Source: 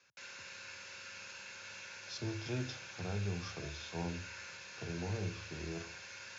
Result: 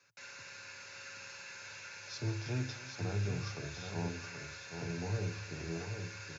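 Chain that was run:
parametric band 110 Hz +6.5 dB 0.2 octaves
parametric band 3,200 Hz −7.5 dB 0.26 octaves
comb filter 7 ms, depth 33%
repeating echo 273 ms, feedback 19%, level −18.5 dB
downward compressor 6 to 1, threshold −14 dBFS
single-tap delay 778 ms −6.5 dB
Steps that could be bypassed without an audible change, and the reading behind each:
downward compressor, threshold −14 dBFS: peak of its input −25.0 dBFS

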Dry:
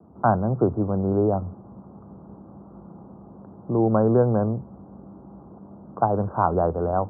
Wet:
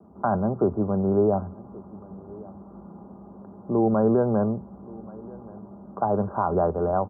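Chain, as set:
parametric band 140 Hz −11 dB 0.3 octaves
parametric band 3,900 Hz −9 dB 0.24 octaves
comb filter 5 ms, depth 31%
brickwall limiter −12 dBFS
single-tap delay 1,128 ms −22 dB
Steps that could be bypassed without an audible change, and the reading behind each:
parametric band 3,900 Hz: nothing at its input above 1,400 Hz

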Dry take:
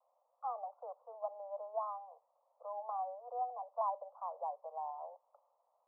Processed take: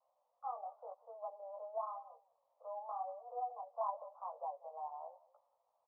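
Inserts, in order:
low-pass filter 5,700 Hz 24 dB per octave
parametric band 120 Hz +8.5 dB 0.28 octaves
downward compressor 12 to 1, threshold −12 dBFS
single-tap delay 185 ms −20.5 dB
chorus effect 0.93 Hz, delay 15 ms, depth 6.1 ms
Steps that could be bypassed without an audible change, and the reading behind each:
low-pass filter 5,700 Hz: nothing at its input above 1,300 Hz
parametric band 120 Hz: nothing at its input below 430 Hz
downward compressor, threshold −12 dBFS: peak of its input −24.5 dBFS

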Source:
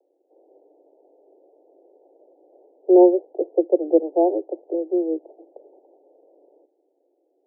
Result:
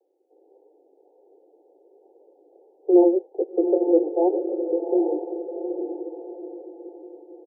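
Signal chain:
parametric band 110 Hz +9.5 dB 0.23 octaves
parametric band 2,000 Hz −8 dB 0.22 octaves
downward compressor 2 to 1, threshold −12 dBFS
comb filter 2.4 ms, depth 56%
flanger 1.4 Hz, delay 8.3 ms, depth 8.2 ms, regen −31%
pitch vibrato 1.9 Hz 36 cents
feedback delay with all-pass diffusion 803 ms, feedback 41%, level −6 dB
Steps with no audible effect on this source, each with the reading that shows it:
parametric band 110 Hz: nothing at its input below 290 Hz
parametric band 2,000 Hz: nothing at its input above 910 Hz

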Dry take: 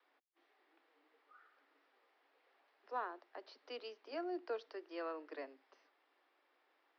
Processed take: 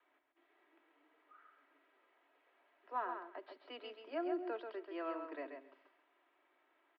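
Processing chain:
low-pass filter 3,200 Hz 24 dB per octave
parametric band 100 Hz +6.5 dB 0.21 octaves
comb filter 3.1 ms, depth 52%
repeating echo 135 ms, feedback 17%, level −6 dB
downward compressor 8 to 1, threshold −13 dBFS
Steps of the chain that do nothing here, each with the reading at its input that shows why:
parametric band 100 Hz: nothing at its input below 210 Hz
downward compressor, threshold −13 dBFS: peak of its input −27.0 dBFS

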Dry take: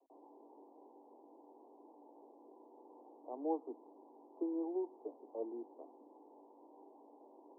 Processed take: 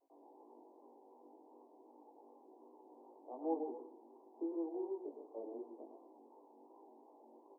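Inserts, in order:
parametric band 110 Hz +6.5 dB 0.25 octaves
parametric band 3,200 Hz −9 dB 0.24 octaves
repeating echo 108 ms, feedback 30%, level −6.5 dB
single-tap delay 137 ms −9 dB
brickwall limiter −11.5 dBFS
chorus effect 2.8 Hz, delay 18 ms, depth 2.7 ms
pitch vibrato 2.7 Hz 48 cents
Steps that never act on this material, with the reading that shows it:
parametric band 110 Hz: nothing at its input below 230 Hz
parametric band 3,200 Hz: nothing at its input above 1,000 Hz
brickwall limiter −11.5 dBFS: peak of its input −25.0 dBFS

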